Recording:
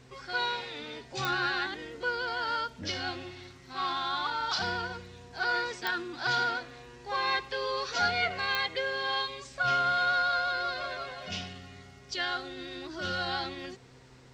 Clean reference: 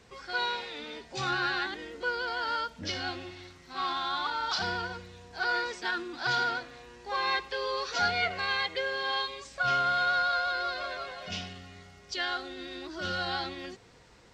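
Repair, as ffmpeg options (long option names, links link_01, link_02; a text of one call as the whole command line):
ffmpeg -i in.wav -af "adeclick=threshold=4,bandreject=frequency=128.5:width_type=h:width=4,bandreject=frequency=257:width_type=h:width=4,bandreject=frequency=385.5:width_type=h:width=4" out.wav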